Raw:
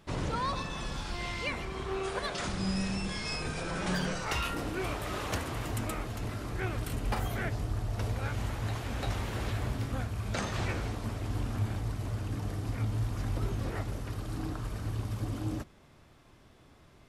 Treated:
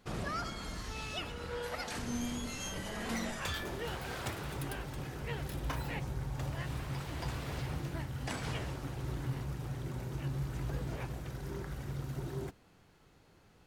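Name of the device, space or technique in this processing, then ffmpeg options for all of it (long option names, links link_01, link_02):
nightcore: -af "asetrate=55125,aresample=44100,volume=-5dB"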